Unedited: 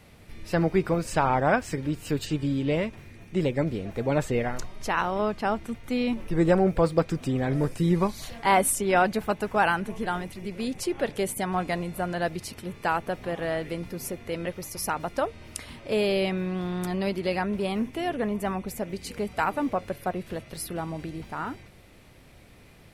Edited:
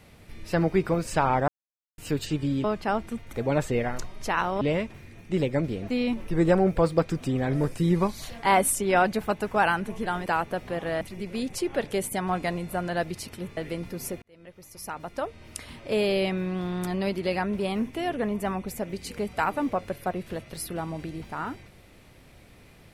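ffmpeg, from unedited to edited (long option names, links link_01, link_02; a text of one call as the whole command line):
ffmpeg -i in.wav -filter_complex "[0:a]asplit=11[link_01][link_02][link_03][link_04][link_05][link_06][link_07][link_08][link_09][link_10][link_11];[link_01]atrim=end=1.48,asetpts=PTS-STARTPTS,afade=type=out:start_time=1.476:duration=0.004:curve=hsin[link_12];[link_02]atrim=start=1.48:end=1.98,asetpts=PTS-STARTPTS,volume=0[link_13];[link_03]atrim=start=1.98:end=2.642,asetpts=PTS-STARTPTS,afade=type=in:duration=0.004:curve=hsin[link_14];[link_04]atrim=start=5.208:end=5.902[link_15];[link_05]atrim=start=3.928:end=5.212[link_16];[link_06]atrim=start=2.638:end=3.932[link_17];[link_07]atrim=start=5.898:end=10.262[link_18];[link_08]atrim=start=12.818:end=13.572[link_19];[link_09]atrim=start=10.258:end=12.822[link_20];[link_10]atrim=start=13.568:end=14.22,asetpts=PTS-STARTPTS,afade=type=out:start_time=0.648:duration=0.004:curve=hsin[link_21];[link_11]atrim=start=14.22,asetpts=PTS-STARTPTS,afade=type=in:duration=1.59[link_22];[link_12][link_13][link_14]concat=n=3:v=0:a=1[link_23];[link_23][link_15]acrossfade=duration=0.004:curve1=hsin:curve2=hsin[link_24];[link_24][link_16]acrossfade=duration=0.004:curve1=hsin:curve2=hsin[link_25];[link_25][link_17]acrossfade=duration=0.004:curve1=hsin:curve2=hsin[link_26];[link_26][link_18]acrossfade=duration=0.004:curve1=hsin:curve2=hsin[link_27];[link_27][link_19]acrossfade=duration=0.004:curve1=hsin:curve2=hsin[link_28];[link_28][link_20]acrossfade=duration=0.004:curve1=hsin:curve2=hsin[link_29];[link_21][link_22]concat=n=2:v=0:a=1[link_30];[link_29][link_30]acrossfade=duration=0.004:curve1=hsin:curve2=hsin" out.wav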